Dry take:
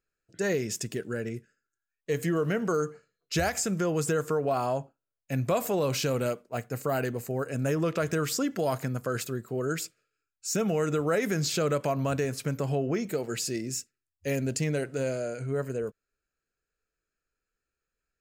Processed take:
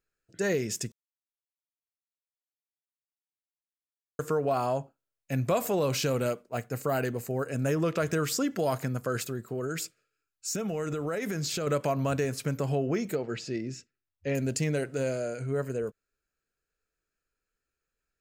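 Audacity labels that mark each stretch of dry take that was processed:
0.920000	4.190000	mute
9.210000	11.670000	compression, threshold -28 dBFS
13.150000	14.350000	distance through air 170 m

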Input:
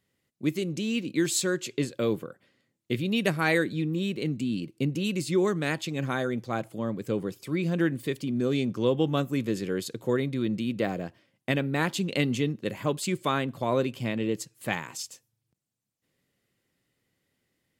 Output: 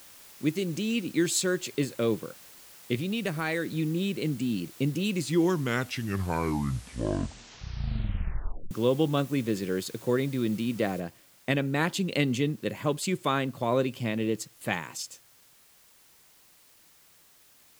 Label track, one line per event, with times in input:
2.950000	3.760000	compression 2:1, threshold -29 dBFS
5.100000	5.100000	tape stop 3.61 s
11.000000	11.000000	noise floor step -51 dB -59 dB

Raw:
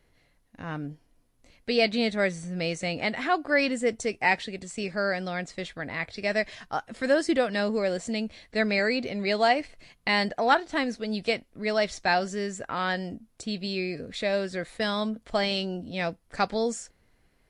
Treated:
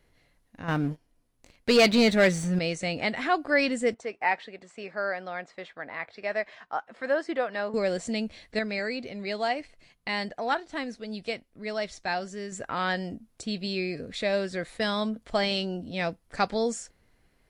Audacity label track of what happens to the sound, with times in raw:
0.680000	2.590000	waveshaping leveller passes 2
3.940000	7.740000	band-pass filter 1 kHz, Q 0.82
8.590000	12.520000	gain -6 dB

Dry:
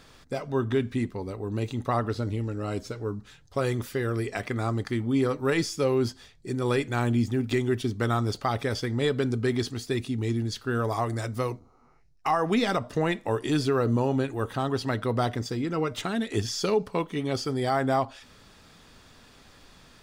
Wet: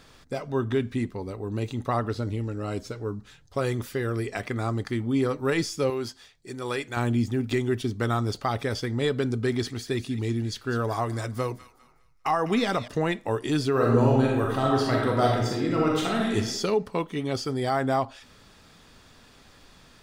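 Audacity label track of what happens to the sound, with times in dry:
5.900000	6.970000	bass shelf 390 Hz -11 dB
9.230000	12.880000	feedback echo behind a high-pass 202 ms, feedback 34%, high-pass 1.5 kHz, level -12 dB
13.710000	16.350000	reverb throw, RT60 0.98 s, DRR -2.5 dB

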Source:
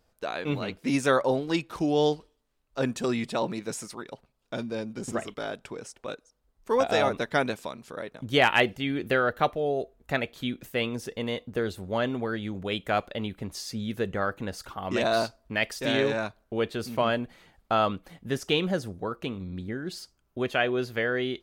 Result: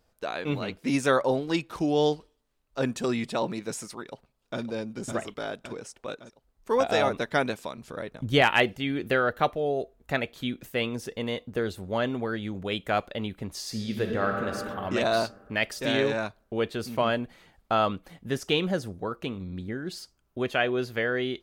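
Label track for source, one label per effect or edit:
3.960000	4.610000	echo throw 560 ms, feedback 60%, level -7 dB
7.770000	8.420000	bass shelf 130 Hz +11 dB
13.540000	14.490000	reverb throw, RT60 2.6 s, DRR 1.5 dB

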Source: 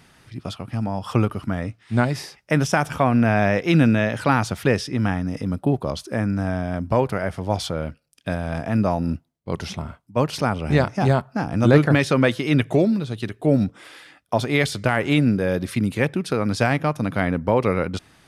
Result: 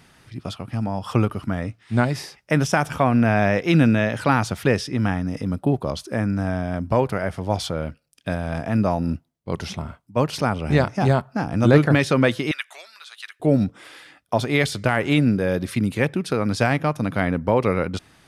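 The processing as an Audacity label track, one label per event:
12.510000	13.400000	high-pass 1.2 kHz 24 dB/octave

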